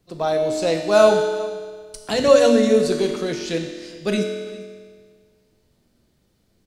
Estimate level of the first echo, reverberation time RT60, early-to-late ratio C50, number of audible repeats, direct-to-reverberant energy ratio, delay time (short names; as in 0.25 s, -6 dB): -20.5 dB, 1.7 s, 5.0 dB, 1, 2.5 dB, 0.399 s